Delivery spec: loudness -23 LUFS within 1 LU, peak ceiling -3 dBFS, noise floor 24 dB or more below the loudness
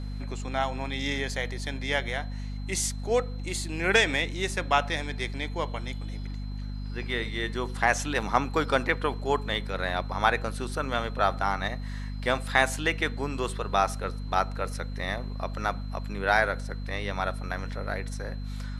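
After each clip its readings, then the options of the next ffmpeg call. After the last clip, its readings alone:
hum 50 Hz; harmonics up to 250 Hz; hum level -32 dBFS; steady tone 4100 Hz; tone level -54 dBFS; loudness -29.0 LUFS; peak -5.0 dBFS; loudness target -23.0 LUFS
-> -af "bandreject=f=50:t=h:w=6,bandreject=f=100:t=h:w=6,bandreject=f=150:t=h:w=6,bandreject=f=200:t=h:w=6,bandreject=f=250:t=h:w=6"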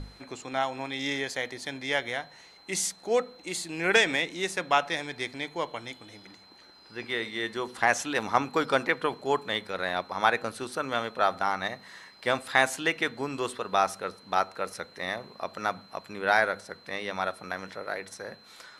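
hum none; steady tone 4100 Hz; tone level -54 dBFS
-> -af "bandreject=f=4.1k:w=30"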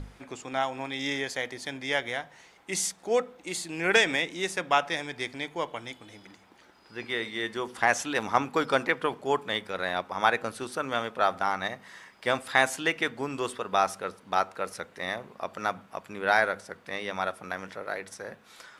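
steady tone none; loudness -29.0 LUFS; peak -5.5 dBFS; loudness target -23.0 LUFS
-> -af "volume=6dB,alimiter=limit=-3dB:level=0:latency=1"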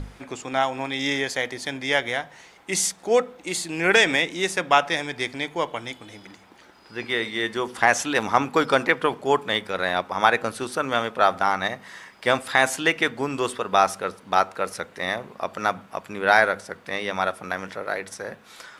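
loudness -23.5 LUFS; peak -3.0 dBFS; noise floor -51 dBFS

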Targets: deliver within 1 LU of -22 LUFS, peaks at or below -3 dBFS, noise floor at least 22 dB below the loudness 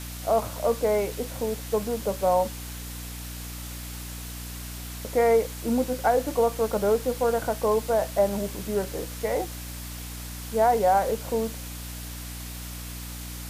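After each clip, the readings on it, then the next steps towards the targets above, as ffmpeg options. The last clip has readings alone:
hum 60 Hz; harmonics up to 300 Hz; hum level -36 dBFS; noise floor -37 dBFS; noise floor target -49 dBFS; loudness -27.0 LUFS; peak -11.0 dBFS; loudness target -22.0 LUFS
-> -af "bandreject=f=60:t=h:w=4,bandreject=f=120:t=h:w=4,bandreject=f=180:t=h:w=4,bandreject=f=240:t=h:w=4,bandreject=f=300:t=h:w=4"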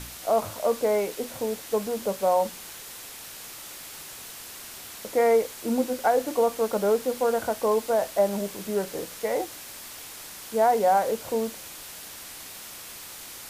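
hum none; noise floor -42 dBFS; noise floor target -48 dBFS
-> -af "afftdn=nr=6:nf=-42"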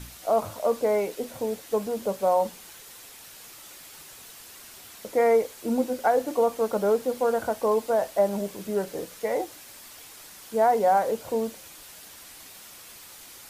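noise floor -47 dBFS; noise floor target -48 dBFS
-> -af "afftdn=nr=6:nf=-47"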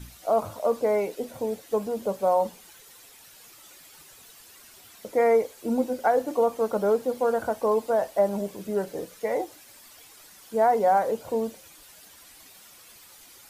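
noise floor -51 dBFS; loudness -26.0 LUFS; peak -12.0 dBFS; loudness target -22.0 LUFS
-> -af "volume=4dB"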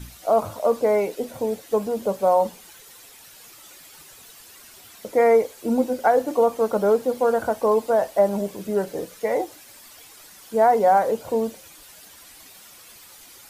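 loudness -22.0 LUFS; peak -8.0 dBFS; noise floor -47 dBFS

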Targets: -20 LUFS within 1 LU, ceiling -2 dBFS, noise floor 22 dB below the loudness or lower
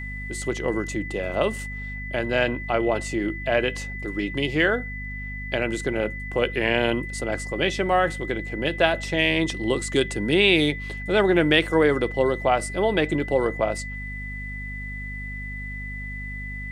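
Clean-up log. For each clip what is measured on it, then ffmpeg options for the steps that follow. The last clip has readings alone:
hum 50 Hz; harmonics up to 250 Hz; hum level -32 dBFS; steady tone 2000 Hz; tone level -34 dBFS; loudness -24.5 LUFS; peak -3.0 dBFS; loudness target -20.0 LUFS
-> -af "bandreject=f=50:t=h:w=6,bandreject=f=100:t=h:w=6,bandreject=f=150:t=h:w=6,bandreject=f=200:t=h:w=6,bandreject=f=250:t=h:w=6"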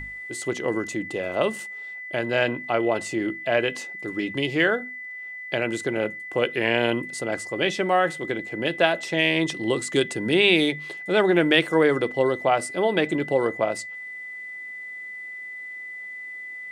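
hum none; steady tone 2000 Hz; tone level -34 dBFS
-> -af "bandreject=f=2k:w=30"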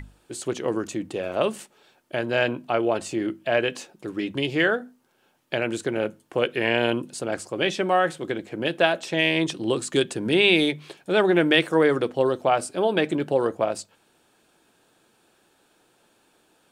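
steady tone none; loudness -24.0 LUFS; peak -4.0 dBFS; loudness target -20.0 LUFS
-> -af "volume=4dB,alimiter=limit=-2dB:level=0:latency=1"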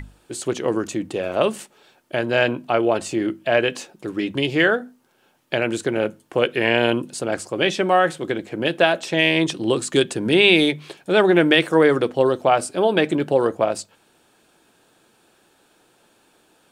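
loudness -20.0 LUFS; peak -2.0 dBFS; noise floor -60 dBFS

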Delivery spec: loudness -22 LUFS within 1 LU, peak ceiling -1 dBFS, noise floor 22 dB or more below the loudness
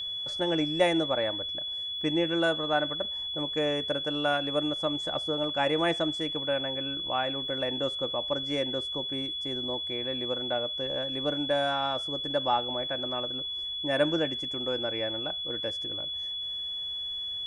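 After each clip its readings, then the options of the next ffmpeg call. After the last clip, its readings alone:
steady tone 3400 Hz; tone level -32 dBFS; loudness -29.0 LUFS; peak -11.5 dBFS; loudness target -22.0 LUFS
-> -af "bandreject=f=3.4k:w=30"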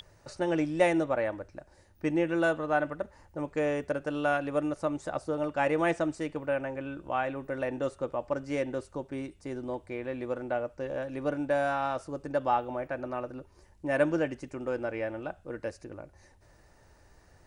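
steady tone none; loudness -31.5 LUFS; peak -11.5 dBFS; loudness target -22.0 LUFS
-> -af "volume=9.5dB"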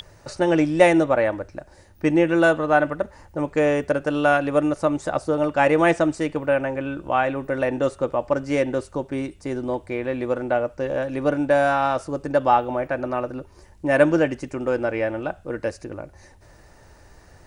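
loudness -22.0 LUFS; peak -2.0 dBFS; noise floor -51 dBFS

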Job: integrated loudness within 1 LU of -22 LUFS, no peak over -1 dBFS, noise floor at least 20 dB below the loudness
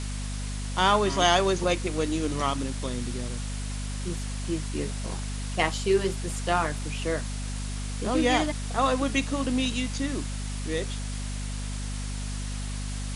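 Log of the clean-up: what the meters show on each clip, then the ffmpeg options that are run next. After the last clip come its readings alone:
hum 50 Hz; harmonics up to 250 Hz; hum level -30 dBFS; noise floor -32 dBFS; noise floor target -49 dBFS; loudness -28.5 LUFS; peak -7.5 dBFS; loudness target -22.0 LUFS
-> -af "bandreject=f=50:t=h:w=6,bandreject=f=100:t=h:w=6,bandreject=f=150:t=h:w=6,bandreject=f=200:t=h:w=6,bandreject=f=250:t=h:w=6"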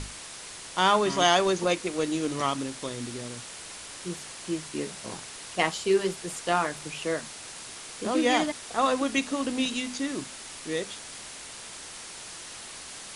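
hum none; noise floor -43 dBFS; noise floor target -48 dBFS
-> -af "afftdn=nr=6:nf=-43"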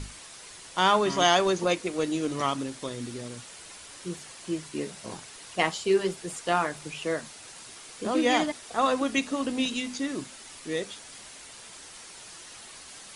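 noise floor -47 dBFS; noise floor target -48 dBFS
-> -af "afftdn=nr=6:nf=-47"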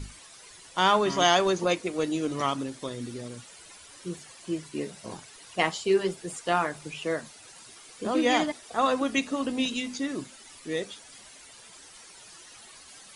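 noise floor -50 dBFS; loudness -28.0 LUFS; peak -7.5 dBFS; loudness target -22.0 LUFS
-> -af "volume=6dB"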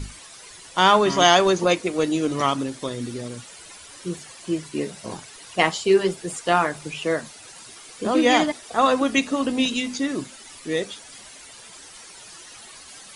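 loudness -22.0 LUFS; peak -1.5 dBFS; noise floor -44 dBFS

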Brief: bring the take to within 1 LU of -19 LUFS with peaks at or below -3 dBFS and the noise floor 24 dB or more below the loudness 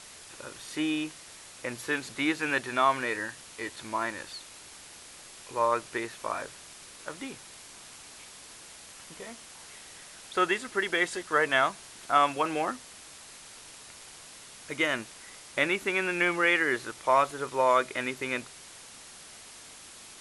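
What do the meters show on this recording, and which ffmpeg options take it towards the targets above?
noise floor -49 dBFS; noise floor target -53 dBFS; loudness -28.5 LUFS; peak -8.5 dBFS; loudness target -19.0 LUFS
-> -af "afftdn=nr=6:nf=-49"
-af "volume=9.5dB,alimiter=limit=-3dB:level=0:latency=1"

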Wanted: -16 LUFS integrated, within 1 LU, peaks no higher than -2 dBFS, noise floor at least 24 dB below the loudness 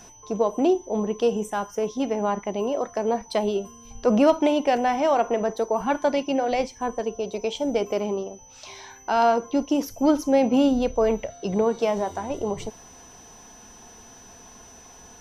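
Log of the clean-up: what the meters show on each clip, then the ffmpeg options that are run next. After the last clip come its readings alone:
steady tone 6000 Hz; tone level -48 dBFS; loudness -24.0 LUFS; peak -8.0 dBFS; loudness target -16.0 LUFS
-> -af "bandreject=f=6k:w=30"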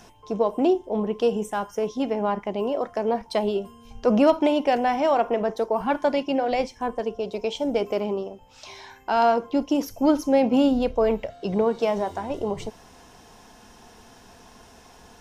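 steady tone none; loudness -24.0 LUFS; peak -8.0 dBFS; loudness target -16.0 LUFS
-> -af "volume=8dB,alimiter=limit=-2dB:level=0:latency=1"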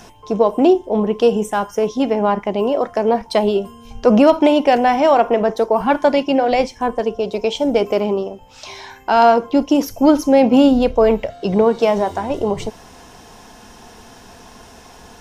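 loudness -16.0 LUFS; peak -2.0 dBFS; noise floor -43 dBFS

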